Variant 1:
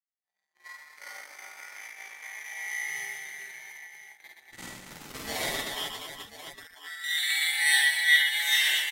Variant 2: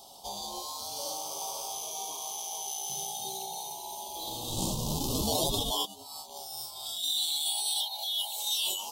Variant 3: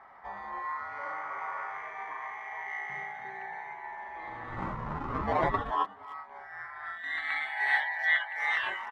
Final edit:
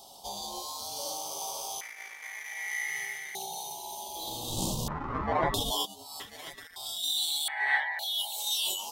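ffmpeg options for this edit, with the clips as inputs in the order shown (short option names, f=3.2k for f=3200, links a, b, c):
-filter_complex "[0:a]asplit=2[a][b];[2:a]asplit=2[c][d];[1:a]asplit=5[e][f][g][h][i];[e]atrim=end=1.812[j];[a]atrim=start=1.808:end=3.352[k];[f]atrim=start=3.348:end=4.882[l];[c]atrim=start=4.878:end=5.542[m];[g]atrim=start=5.538:end=6.202[n];[b]atrim=start=6.198:end=6.762[o];[h]atrim=start=6.758:end=7.482[p];[d]atrim=start=7.478:end=7.992[q];[i]atrim=start=7.988[r];[j][k]acrossfade=d=0.004:c1=hsin:c2=hsin[s];[s][l]acrossfade=d=0.004:c1=hsin:c2=hsin[t];[t][m]acrossfade=d=0.004:c1=hsin:c2=hsin[u];[u][n]acrossfade=d=0.004:c1=hsin:c2=hsin[v];[v][o]acrossfade=d=0.004:c1=hsin:c2=hsin[w];[w][p]acrossfade=d=0.004:c1=hsin:c2=hsin[x];[x][q]acrossfade=d=0.004:c1=hsin:c2=hsin[y];[y][r]acrossfade=d=0.004:c1=hsin:c2=hsin"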